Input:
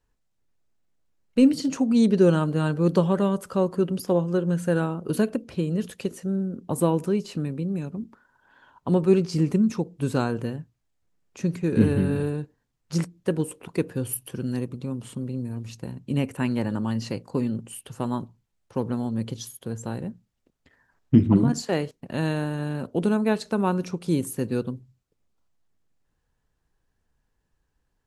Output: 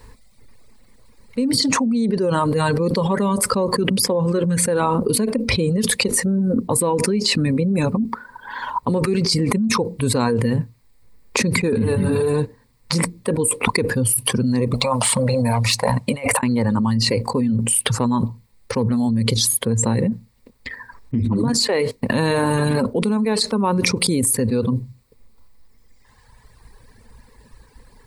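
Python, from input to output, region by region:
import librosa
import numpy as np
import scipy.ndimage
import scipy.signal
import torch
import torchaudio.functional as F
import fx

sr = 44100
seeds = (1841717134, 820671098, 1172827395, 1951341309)

y = fx.chain(x, sr, fx.low_shelf_res(hz=480.0, db=-10.5, q=3.0),
    fx.over_compress(threshold_db=-43.0, ratio=-1.0),
    fx.clip_hard(threshold_db=-32.5), at=(14.74, 16.43))
y = fx.dereverb_blind(y, sr, rt60_s=1.9)
y = fx.ripple_eq(y, sr, per_octave=0.94, db=9)
y = fx.env_flatten(y, sr, amount_pct=100)
y = F.gain(torch.from_numpy(y), -11.0).numpy()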